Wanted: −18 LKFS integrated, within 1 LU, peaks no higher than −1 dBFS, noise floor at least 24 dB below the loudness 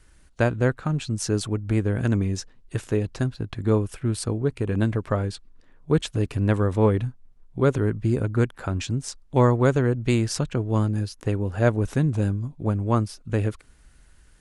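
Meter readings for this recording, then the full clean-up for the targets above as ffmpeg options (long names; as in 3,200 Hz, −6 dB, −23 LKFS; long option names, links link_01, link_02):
integrated loudness −24.5 LKFS; sample peak −5.5 dBFS; target loudness −18.0 LKFS
→ -af "volume=6.5dB,alimiter=limit=-1dB:level=0:latency=1"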